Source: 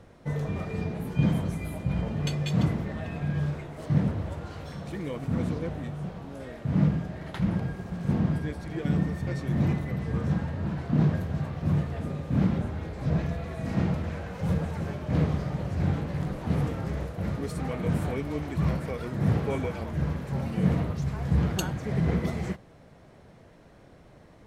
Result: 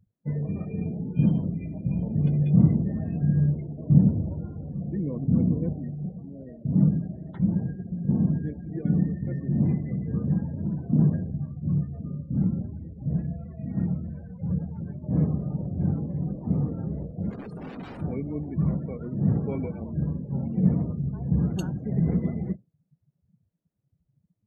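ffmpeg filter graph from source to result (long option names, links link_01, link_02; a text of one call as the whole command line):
ffmpeg -i in.wav -filter_complex "[0:a]asettb=1/sr,asplit=3[link_01][link_02][link_03];[link_01]atrim=end=2.154[link_04];[link_02]atrim=start=2.15:end=5.73,asetpts=PTS-STARTPTS,afade=type=in:duration=0.004:curve=qsin,afade=type=out:start_time=3.576:duration=0.004:curve=qsin,acrossover=split=2700[link_05][link_06];[link_06]acompressor=threshold=-56dB:ratio=4:attack=1:release=60[link_07];[link_05][link_07]amix=inputs=2:normalize=0,lowshelf=frequency=300:gain=6[link_08];[link_03]atrim=start=5.726[link_09];[link_04][link_08]acrossfade=duration=0.004:curve1=hsin:curve2=qsin[link_10];[link_10][link_09]acrossfade=duration=0.004:curve1=qsin:curve2=hsin,asettb=1/sr,asplit=3[link_11][link_12][link_13];[link_11]atrim=end=11.304[link_14];[link_12]atrim=start=11.3:end=15.04,asetpts=PTS-STARTPTS,afade=type=in:duration=0.004:curve=qsin,afade=type=out:start_time=3.736:duration=0.004:curve=qsin,equalizer=frequency=400:width=0.5:gain=-6,asplit=2[link_15][link_16];[link_16]adelay=28,volume=-11dB[link_17];[link_15][link_17]amix=inputs=2:normalize=0,atrim=end_sample=164934[link_18];[link_13]atrim=start=15.036[link_19];[link_14][link_18]acrossfade=duration=0.004:curve1=hsin:curve2=qsin[link_20];[link_20][link_19]acrossfade=duration=0.004:curve1=qsin:curve2=hsin,asettb=1/sr,asplit=3[link_21][link_22][link_23];[link_21]atrim=end=17.304[link_24];[link_22]atrim=start=17.3:end=18.01,asetpts=PTS-STARTPTS,afade=type=in:duration=0.004:curve=qsin,afade=type=out:start_time=0.706:duration=0.004:curve=qsin,highpass=frequency=150:poles=1,aeval=exprs='(mod(28.2*val(0)+1,2)-1)/28.2':channel_layout=same[link_25];[link_23]atrim=start=18.006[link_26];[link_24][link_25]acrossfade=duration=0.004:curve1=hsin:curve2=qsin[link_27];[link_27][link_26]acrossfade=duration=0.004:curve1=qsin:curve2=hsin,afftdn=noise_reduction=34:noise_floor=-36,equalizer=frequency=200:width_type=o:width=2.1:gain=12.5,volume=-8.5dB" out.wav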